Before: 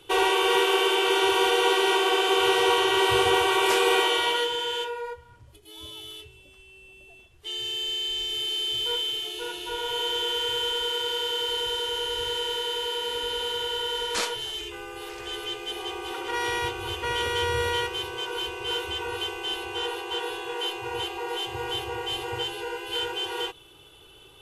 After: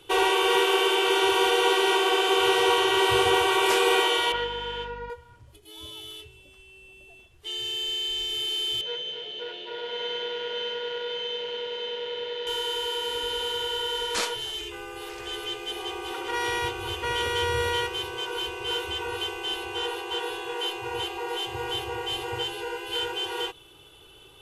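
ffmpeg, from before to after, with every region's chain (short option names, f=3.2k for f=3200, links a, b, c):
-filter_complex "[0:a]asettb=1/sr,asplit=3[a][b][c];[a]atrim=end=4.324[d];[b]atrim=start=4.32:end=5.1,asetpts=PTS-STARTPTS,afade=t=in:d=0.004:c=qsin,afade=t=out:st=0.776:d=0.004:c=qsin,aeval=exprs='sgn(val(0))*max(abs(val(0))-0.0075,0)':c=same,highpass=390,lowpass=2.8k,aeval=exprs='val(0)+0.00708*(sin(2*PI*50*n/s)+sin(2*PI*2*50*n/s)/2+sin(2*PI*3*50*n/s)/3+sin(2*PI*4*50*n/s)/4+sin(2*PI*5*50*n/s)/5)':c=same[e];[c]atrim=start=5.096[f];[d][e]acrossfade=d=0.004:c1=hsin:c2=qsin[g];[g][f]acrossfade=d=0.004:c1=qsin:c2=hsin,asettb=1/sr,asplit=3[h][i][j];[h]atrim=end=8.814[k];[i]atrim=start=8.81:end=12.47,asetpts=PTS-STARTPTS,afade=t=in:d=0.004:c=qsin,afade=t=out:st=3.656:d=0.004:c=qsin,aecho=1:1:262:0.398,atrim=end_sample=161406,aeval=exprs='clip(val(0),-1,0.0178)':c=same,highpass=220,equalizer=f=320:t=q:w=4:g=-7,equalizer=f=570:t=q:w=4:g=8,equalizer=f=880:t=q:w=4:g=-6,equalizer=f=1.2k:t=q:w=4:g=-9,equalizer=f=2.6k:t=q:w=4:g=-4,lowpass=f=3.6k:w=0.5412,lowpass=f=3.6k:w=1.3066[l];[j]atrim=start=12.466[m];[k][l]acrossfade=d=0.004:c1=hsin:c2=qsin[n];[n][m]acrossfade=d=0.004:c1=qsin:c2=hsin"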